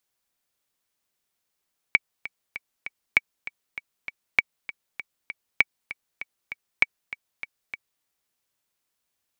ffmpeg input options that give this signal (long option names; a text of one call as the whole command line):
ffmpeg -f lavfi -i "aevalsrc='pow(10,(-3-16.5*gte(mod(t,4*60/197),60/197))/20)*sin(2*PI*2270*mod(t,60/197))*exp(-6.91*mod(t,60/197)/0.03)':duration=6.09:sample_rate=44100" out.wav